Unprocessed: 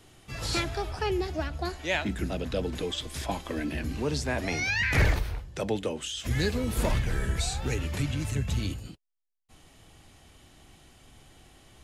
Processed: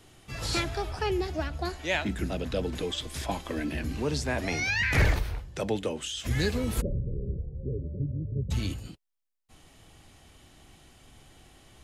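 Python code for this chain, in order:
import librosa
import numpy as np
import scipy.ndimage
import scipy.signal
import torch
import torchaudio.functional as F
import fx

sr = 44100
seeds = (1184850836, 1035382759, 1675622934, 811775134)

y = fx.cheby_ripple(x, sr, hz=580.0, ripple_db=6, at=(6.8, 8.5), fade=0.02)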